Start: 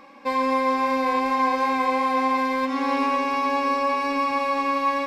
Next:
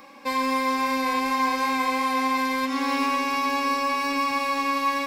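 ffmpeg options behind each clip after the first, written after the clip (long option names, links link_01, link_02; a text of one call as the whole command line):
ffmpeg -i in.wav -filter_complex "[0:a]acrossover=split=400|870[link_01][link_02][link_03];[link_02]acompressor=threshold=-40dB:ratio=6[link_04];[link_03]crystalizer=i=2:c=0[link_05];[link_01][link_04][link_05]amix=inputs=3:normalize=0" out.wav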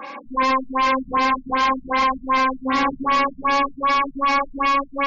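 ffmpeg -i in.wav -filter_complex "[0:a]asplit=2[link_01][link_02];[link_02]highpass=frequency=720:poles=1,volume=15dB,asoftclip=type=tanh:threshold=-12.5dB[link_03];[link_01][link_03]amix=inputs=2:normalize=0,lowpass=frequency=2600:poles=1,volume=-6dB,asoftclip=type=tanh:threshold=-20.5dB,afftfilt=real='re*lt(b*sr/1024,210*pow(7400/210,0.5+0.5*sin(2*PI*2.6*pts/sr)))':imag='im*lt(b*sr/1024,210*pow(7400/210,0.5+0.5*sin(2*PI*2.6*pts/sr)))':win_size=1024:overlap=0.75,volume=6.5dB" out.wav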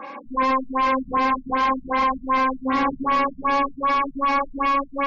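ffmpeg -i in.wav -af "highshelf=frequency=2700:gain=-11" out.wav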